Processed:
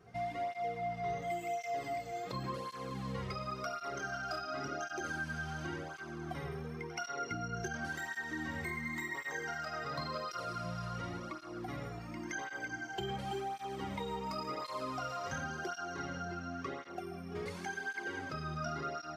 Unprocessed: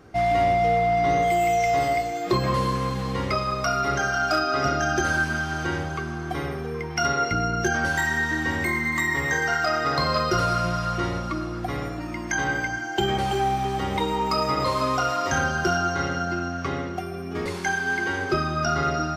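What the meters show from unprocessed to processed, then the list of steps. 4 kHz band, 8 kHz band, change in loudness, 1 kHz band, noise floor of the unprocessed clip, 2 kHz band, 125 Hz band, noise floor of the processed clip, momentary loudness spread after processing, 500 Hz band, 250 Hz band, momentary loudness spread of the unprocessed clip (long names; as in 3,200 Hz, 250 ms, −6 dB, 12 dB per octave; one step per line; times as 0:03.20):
−16.0 dB, −15.5 dB, −15.5 dB, −16.0 dB, −32 dBFS, −15.5 dB, −15.0 dB, −47 dBFS, 5 LU, −15.5 dB, −14.5 dB, 9 LU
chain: downward compressor 3 to 1, threshold −26 dBFS, peak gain reduction 7 dB
echo ahead of the sound 77 ms −19 dB
through-zero flanger with one copy inverted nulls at 0.92 Hz, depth 3.7 ms
level −8.5 dB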